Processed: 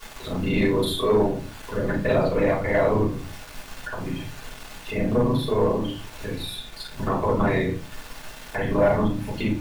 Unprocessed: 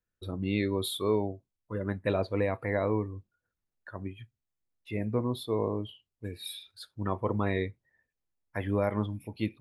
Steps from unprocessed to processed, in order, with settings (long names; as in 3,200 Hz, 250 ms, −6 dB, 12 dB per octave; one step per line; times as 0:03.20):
reversed piece by piece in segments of 33 ms
background noise pink −54 dBFS
high-shelf EQ 5,400 Hz −7 dB
rectangular room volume 150 cubic metres, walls furnished, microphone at 5.1 metres
leveller curve on the samples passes 1
low-shelf EQ 330 Hz −3.5 dB
one half of a high-frequency compander encoder only
level −4 dB